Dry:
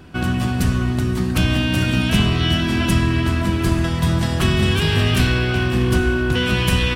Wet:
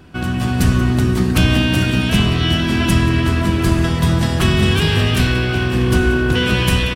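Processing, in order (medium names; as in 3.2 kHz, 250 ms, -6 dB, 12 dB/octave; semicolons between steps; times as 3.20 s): level rider; frequency-shifting echo 181 ms, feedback 54%, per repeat +73 Hz, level -17.5 dB; trim -1 dB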